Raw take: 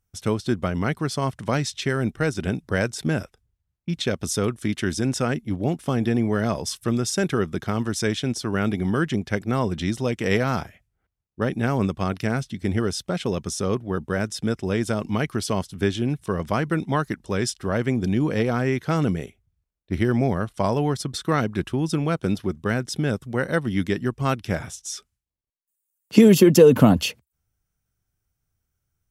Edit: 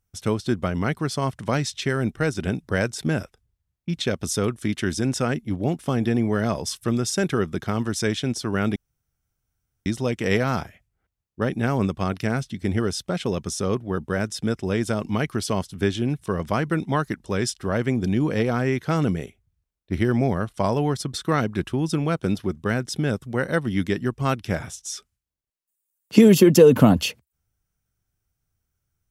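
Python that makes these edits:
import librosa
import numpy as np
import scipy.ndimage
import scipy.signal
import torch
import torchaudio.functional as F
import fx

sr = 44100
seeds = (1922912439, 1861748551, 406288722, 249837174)

y = fx.edit(x, sr, fx.room_tone_fill(start_s=8.76, length_s=1.1), tone=tone)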